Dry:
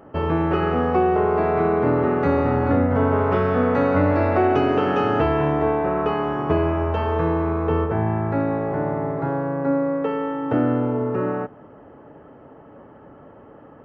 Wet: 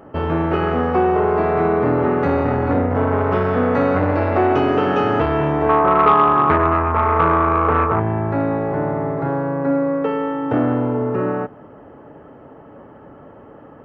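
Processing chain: 5.69–8.00 s: resonant low-pass 1.2 kHz, resonance Q 7.2; transformer saturation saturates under 710 Hz; trim +3.5 dB

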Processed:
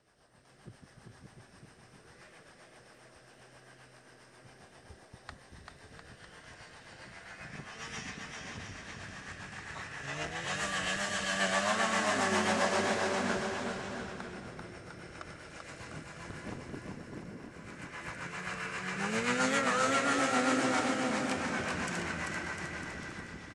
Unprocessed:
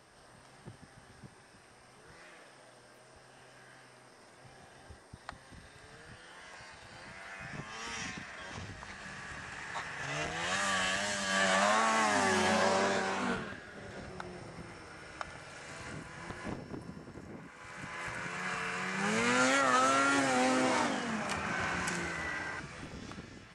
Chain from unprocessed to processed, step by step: level rider gain up to 6.5 dB; rotary cabinet horn 7.5 Hz; bouncing-ball echo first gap 390 ms, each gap 0.8×, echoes 5; trim -6.5 dB

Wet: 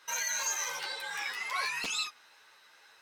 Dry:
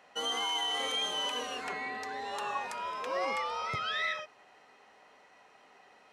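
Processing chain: chorus 0.99 Hz, delay 17.5 ms, depth 7.6 ms; wide varispeed 2.03×; loudspeaker Doppler distortion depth 0.79 ms; trim +3 dB

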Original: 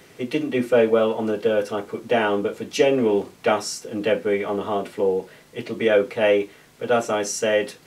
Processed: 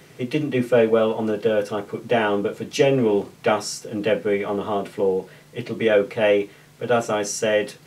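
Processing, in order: peaking EQ 140 Hz +10.5 dB 0.43 oct

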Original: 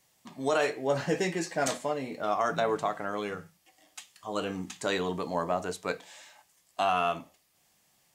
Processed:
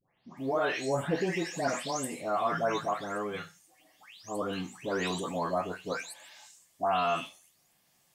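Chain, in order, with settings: delay that grows with frequency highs late, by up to 369 ms

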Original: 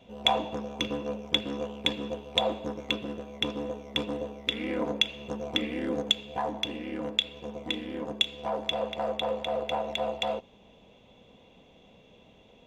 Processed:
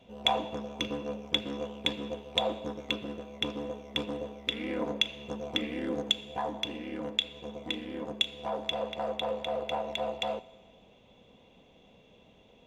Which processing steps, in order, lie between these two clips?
Schroeder reverb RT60 1.5 s, combs from 27 ms, DRR 19 dB; trim -2.5 dB

